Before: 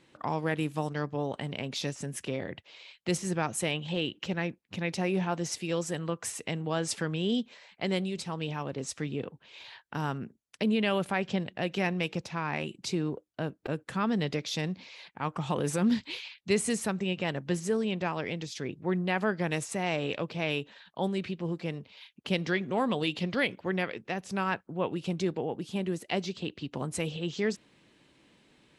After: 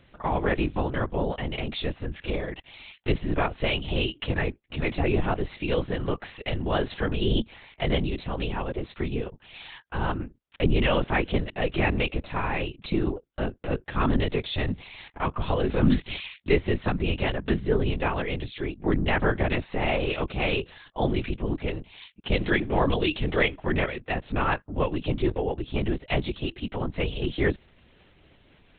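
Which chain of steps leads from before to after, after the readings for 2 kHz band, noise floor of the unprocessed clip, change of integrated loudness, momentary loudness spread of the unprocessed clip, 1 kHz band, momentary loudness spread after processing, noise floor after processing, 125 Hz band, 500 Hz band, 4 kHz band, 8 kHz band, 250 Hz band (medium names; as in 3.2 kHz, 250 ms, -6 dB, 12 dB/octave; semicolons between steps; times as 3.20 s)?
+5.0 dB, -67 dBFS, +4.5 dB, 8 LU, +4.5 dB, 8 LU, -61 dBFS, +6.0 dB, +4.5 dB, +3.5 dB, under -40 dB, +2.5 dB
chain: LPC vocoder at 8 kHz whisper; trim +5.5 dB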